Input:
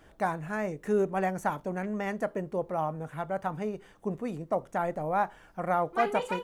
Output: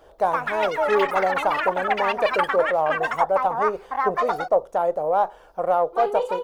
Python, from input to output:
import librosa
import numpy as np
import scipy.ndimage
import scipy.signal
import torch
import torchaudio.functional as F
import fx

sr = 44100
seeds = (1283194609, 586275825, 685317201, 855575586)

p1 = fx.diode_clip(x, sr, knee_db=-15.5)
p2 = fx.rider(p1, sr, range_db=10, speed_s=0.5)
p3 = p1 + (p2 * 10.0 ** (-1.0 / 20.0))
p4 = fx.graphic_eq_10(p3, sr, hz=(125, 250, 500, 1000, 2000, 4000, 8000), db=(-10, -10, 11, 4, -9, 3, -5))
p5 = fx.echo_pitch(p4, sr, ms=187, semitones=7, count=3, db_per_echo=-3.0)
y = p5 * 10.0 ** (-2.0 / 20.0)